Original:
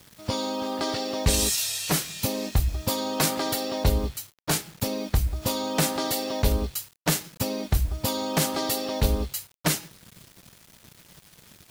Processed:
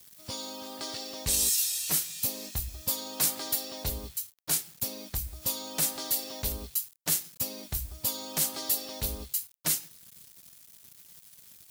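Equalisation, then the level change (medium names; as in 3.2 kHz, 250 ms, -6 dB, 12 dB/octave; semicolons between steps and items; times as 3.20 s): pre-emphasis filter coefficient 0.8; 0.0 dB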